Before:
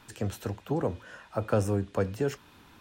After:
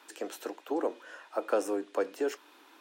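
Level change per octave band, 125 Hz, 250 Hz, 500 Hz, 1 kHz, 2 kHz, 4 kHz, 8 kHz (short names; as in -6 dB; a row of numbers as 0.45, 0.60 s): under -35 dB, -4.5 dB, -0.5 dB, 0.0 dB, -0.5 dB, -1.0 dB, -1.0 dB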